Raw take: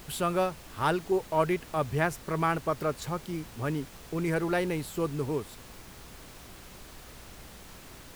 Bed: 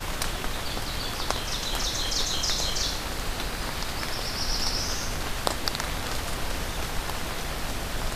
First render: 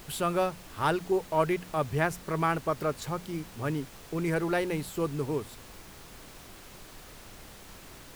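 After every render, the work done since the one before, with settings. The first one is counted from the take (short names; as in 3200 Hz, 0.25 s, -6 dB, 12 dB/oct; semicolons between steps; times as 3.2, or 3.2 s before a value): de-hum 60 Hz, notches 4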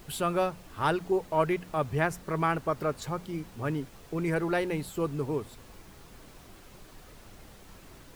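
denoiser 6 dB, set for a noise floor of -49 dBFS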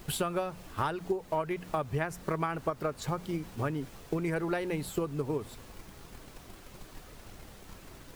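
transient shaper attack +8 dB, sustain +2 dB; compressor 6:1, threshold -28 dBFS, peak gain reduction 12 dB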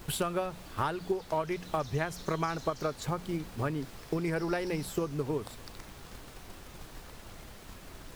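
add bed -22.5 dB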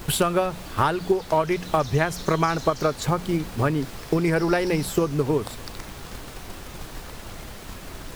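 gain +10 dB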